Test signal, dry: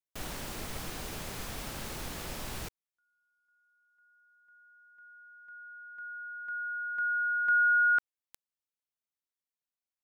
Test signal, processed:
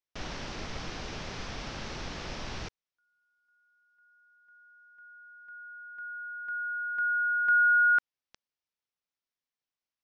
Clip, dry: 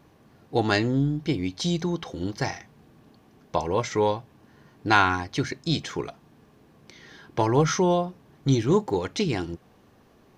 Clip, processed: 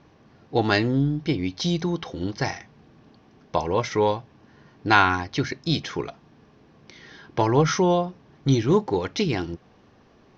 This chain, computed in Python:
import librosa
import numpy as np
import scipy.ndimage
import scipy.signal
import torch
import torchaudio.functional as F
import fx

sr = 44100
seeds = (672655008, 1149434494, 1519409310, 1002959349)

y = scipy.signal.sosfilt(scipy.signal.cheby1(4, 1.0, 5800.0, 'lowpass', fs=sr, output='sos'), x)
y = F.gain(torch.from_numpy(y), 2.5).numpy()